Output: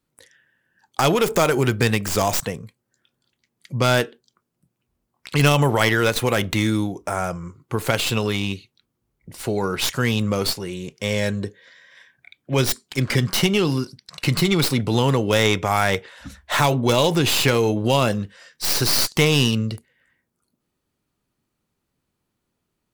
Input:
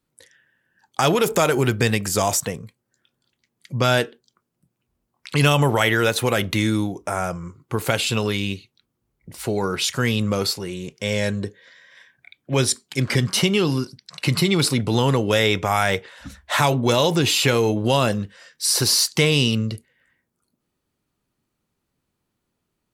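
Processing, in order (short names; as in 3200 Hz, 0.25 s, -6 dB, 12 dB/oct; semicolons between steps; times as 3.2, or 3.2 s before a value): tracing distortion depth 0.11 ms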